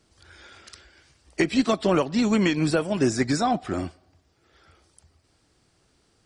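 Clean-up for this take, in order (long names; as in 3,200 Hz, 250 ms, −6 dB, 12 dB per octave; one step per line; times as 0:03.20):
clipped peaks rebuilt −9.5 dBFS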